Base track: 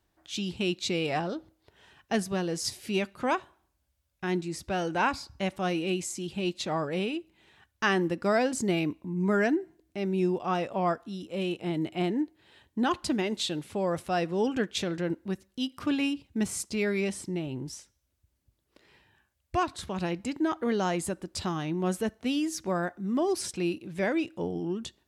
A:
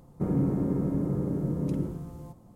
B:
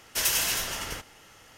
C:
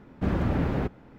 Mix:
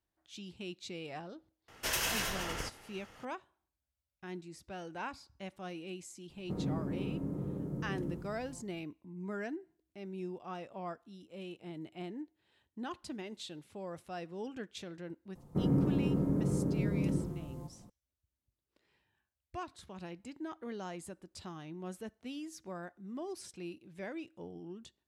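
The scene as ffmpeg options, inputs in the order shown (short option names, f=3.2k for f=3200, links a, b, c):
-filter_complex "[1:a]asplit=2[a][b];[0:a]volume=-14.5dB[c];[2:a]highshelf=f=3.5k:g=-10.5,atrim=end=1.57,asetpts=PTS-STARTPTS,volume=-1.5dB,afade=t=in:d=0.004:c=hsin,afade=t=out:st=1.566:d=0.004:c=hsin,adelay=1680[d];[a]atrim=end=2.55,asetpts=PTS-STARTPTS,volume=-9.5dB,afade=t=in:d=0.004:c=hsin,afade=t=out:st=2.546:d=0.004:c=hsin,adelay=6290[e];[b]atrim=end=2.55,asetpts=PTS-STARTPTS,volume=-3dB,afade=t=in:d=0.004:c=hsin,afade=t=out:st=2.546:d=0.004:c=hsin,adelay=15350[f];[c][d][e][f]amix=inputs=4:normalize=0"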